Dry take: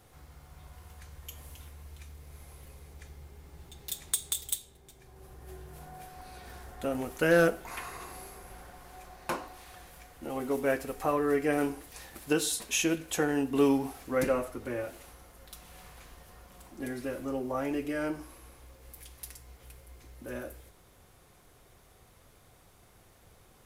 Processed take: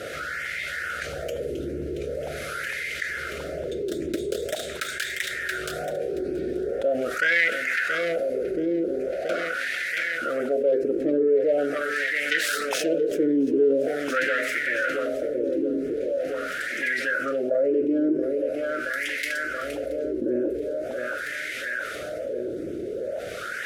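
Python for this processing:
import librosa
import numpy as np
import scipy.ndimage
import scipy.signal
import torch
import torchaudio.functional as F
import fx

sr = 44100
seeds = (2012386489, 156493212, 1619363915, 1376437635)

y = fx.self_delay(x, sr, depth_ms=0.27)
y = scipy.signal.sosfilt(scipy.signal.ellip(3, 1.0, 50, [620.0, 1400.0], 'bandstop', fs=sr, output='sos'), y)
y = fx.high_shelf(y, sr, hz=2200.0, db=7.5)
y = fx.filter_lfo_notch(y, sr, shape='saw_up', hz=2.2, low_hz=760.0, high_hz=4700.0, q=2.8)
y = fx.peak_eq(y, sr, hz=500.0, db=4.0, octaves=1.1)
y = fx.echo_feedback(y, sr, ms=677, feedback_pct=57, wet_db=-11.0)
y = fx.wah_lfo(y, sr, hz=0.43, low_hz=330.0, high_hz=2000.0, q=5.3)
y = fx.env_flatten(y, sr, amount_pct=70)
y = y * librosa.db_to_amplitude(5.5)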